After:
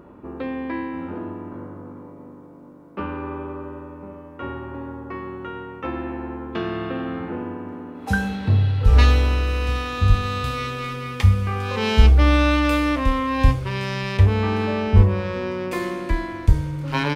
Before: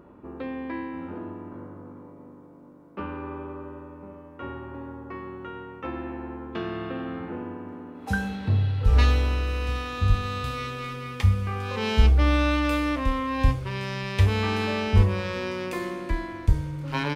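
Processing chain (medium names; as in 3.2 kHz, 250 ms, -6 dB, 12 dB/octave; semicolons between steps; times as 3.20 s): 14.17–15.72 s: treble shelf 2.1 kHz -11.5 dB; trim +5 dB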